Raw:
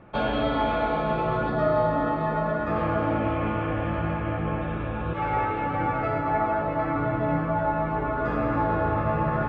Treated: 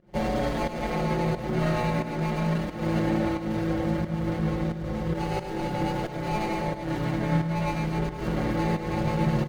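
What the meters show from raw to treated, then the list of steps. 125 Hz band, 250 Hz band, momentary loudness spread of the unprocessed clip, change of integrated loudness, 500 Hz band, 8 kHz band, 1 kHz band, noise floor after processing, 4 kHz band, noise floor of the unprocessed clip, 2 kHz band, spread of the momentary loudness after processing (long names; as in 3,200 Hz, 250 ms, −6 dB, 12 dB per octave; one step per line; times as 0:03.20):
+1.5 dB, +1.5 dB, 4 LU, −2.0 dB, −4.0 dB, can't be measured, −6.5 dB, −35 dBFS, +2.0 dB, −29 dBFS, −4.0 dB, 4 LU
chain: running median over 41 samples
notch filter 2,500 Hz, Q 12
comb filter 5.5 ms, depth 94%
fake sidechain pumping 89 BPM, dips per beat 1, −21 dB, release 230 ms
on a send: single-tap delay 104 ms −9.5 dB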